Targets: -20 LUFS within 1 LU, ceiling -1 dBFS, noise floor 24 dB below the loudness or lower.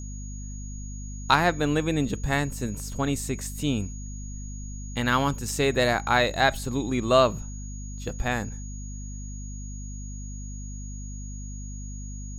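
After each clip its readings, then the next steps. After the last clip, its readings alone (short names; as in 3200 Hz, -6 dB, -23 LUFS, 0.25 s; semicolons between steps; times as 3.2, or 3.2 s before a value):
hum 50 Hz; harmonics up to 250 Hz; hum level -34 dBFS; steady tone 6700 Hz; tone level -44 dBFS; loudness -25.5 LUFS; peak -4.5 dBFS; loudness target -20.0 LUFS
-> de-hum 50 Hz, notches 5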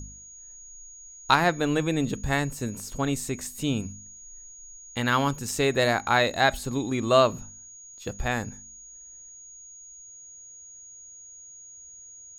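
hum none; steady tone 6700 Hz; tone level -44 dBFS
-> notch 6700 Hz, Q 30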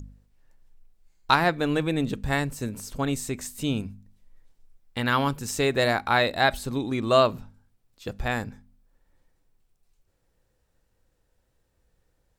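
steady tone none; loudness -25.5 LUFS; peak -4.0 dBFS; loudness target -20.0 LUFS
-> gain +5.5 dB; limiter -1 dBFS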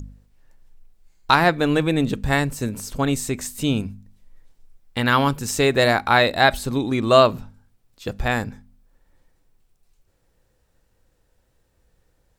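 loudness -20.0 LUFS; peak -1.0 dBFS; noise floor -66 dBFS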